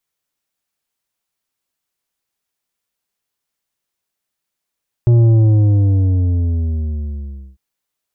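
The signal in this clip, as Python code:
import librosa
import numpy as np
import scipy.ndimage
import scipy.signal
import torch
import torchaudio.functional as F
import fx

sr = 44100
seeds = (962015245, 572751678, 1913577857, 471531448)

y = fx.sub_drop(sr, level_db=-8, start_hz=120.0, length_s=2.5, drive_db=8, fade_s=2.38, end_hz=65.0)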